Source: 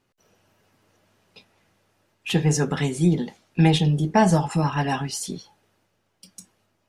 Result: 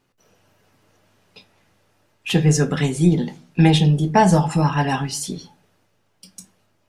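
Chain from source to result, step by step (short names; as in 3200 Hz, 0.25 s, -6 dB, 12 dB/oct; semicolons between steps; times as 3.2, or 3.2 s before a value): 2.38–2.83 bell 890 Hz -14.5 dB 0.2 oct; shoebox room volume 140 m³, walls furnished, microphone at 0.39 m; gain +3 dB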